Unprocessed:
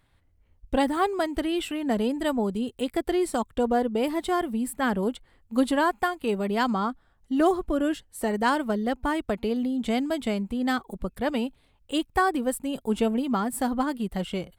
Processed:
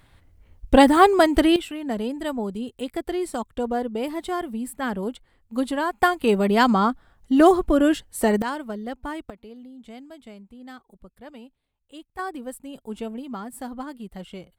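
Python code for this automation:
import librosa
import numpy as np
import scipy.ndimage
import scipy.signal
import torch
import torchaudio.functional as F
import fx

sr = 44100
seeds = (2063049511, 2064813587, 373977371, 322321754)

y = fx.gain(x, sr, db=fx.steps((0.0, 10.0), (1.56, -2.0), (6.02, 7.0), (8.42, -5.5), (9.3, -16.0), (12.19, -8.0)))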